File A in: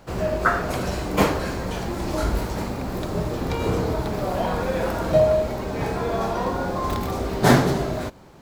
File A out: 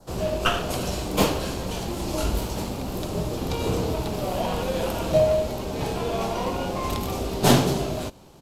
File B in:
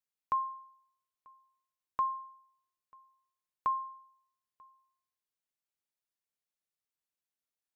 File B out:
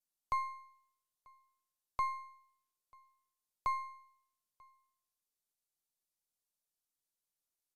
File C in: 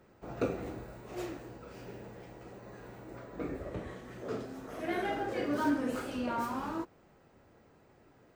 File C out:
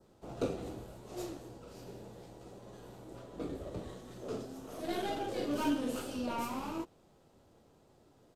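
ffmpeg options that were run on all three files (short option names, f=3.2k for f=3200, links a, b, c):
-filter_complex "[0:a]acrossover=split=170|1400|2900[a][b][c][d];[c]aeval=exprs='abs(val(0))':c=same[e];[a][b][e][d]amix=inputs=4:normalize=0,highshelf=f=4.7k:g=7.5,aresample=32000,aresample=44100,adynamicequalizer=threshold=0.00355:dfrequency=2700:dqfactor=1.8:tfrequency=2700:tqfactor=1.8:attack=5:release=100:ratio=0.375:range=3.5:mode=boostabove:tftype=bell,volume=-2dB"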